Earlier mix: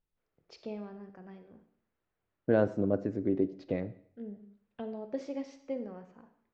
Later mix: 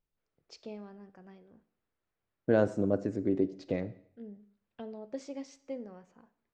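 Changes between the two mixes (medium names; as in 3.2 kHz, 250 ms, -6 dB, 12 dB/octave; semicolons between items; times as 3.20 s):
first voice: send -11.5 dB; master: remove distance through air 150 m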